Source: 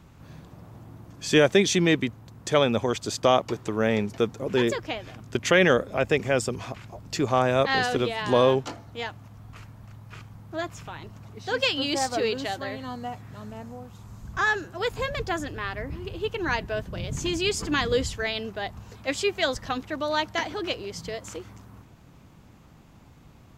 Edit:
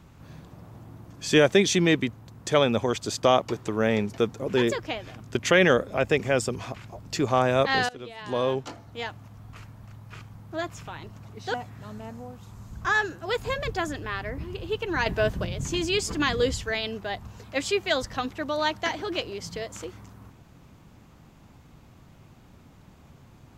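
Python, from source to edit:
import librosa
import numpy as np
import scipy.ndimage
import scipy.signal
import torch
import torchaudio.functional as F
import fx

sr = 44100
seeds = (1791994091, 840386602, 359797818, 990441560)

y = fx.edit(x, sr, fx.fade_in_from(start_s=7.89, length_s=1.23, floor_db=-21.0),
    fx.cut(start_s=11.54, length_s=1.52),
    fx.clip_gain(start_s=16.58, length_s=0.39, db=6.0), tone=tone)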